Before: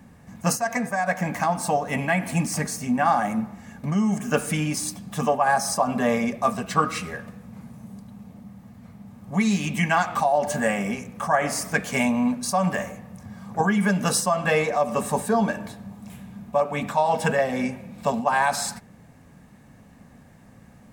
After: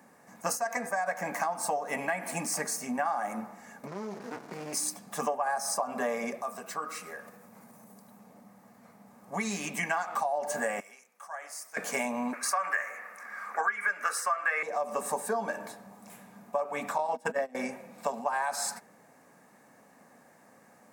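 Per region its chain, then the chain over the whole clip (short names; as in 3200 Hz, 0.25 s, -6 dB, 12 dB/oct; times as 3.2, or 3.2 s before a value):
3.87–4.73 CVSD 32 kbps + compressor 3:1, threshold -25 dBFS + running maximum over 65 samples
6.41–8.19 high shelf 12000 Hz +10 dB + compressor 2:1, threshold -39 dBFS
10.8–11.77 LPF 1900 Hz 6 dB/oct + differentiator
12.33–14.63 Bessel high-pass 430 Hz, order 4 + band shelf 1700 Hz +15.5 dB 1.3 oct
16.98–17.55 gate -23 dBFS, range -22 dB + bell 250 Hz +12 dB 0.56 oct
whole clip: HPF 430 Hz 12 dB/oct; bell 3200 Hz -9 dB 0.88 oct; compressor 6:1, threshold -27 dBFS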